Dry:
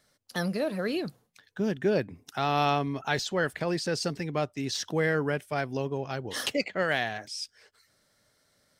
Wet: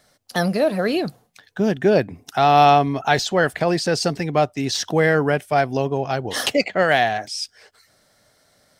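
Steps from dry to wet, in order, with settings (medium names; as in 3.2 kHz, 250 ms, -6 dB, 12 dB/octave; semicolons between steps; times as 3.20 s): peaking EQ 720 Hz +7 dB 0.42 oct; trim +8.5 dB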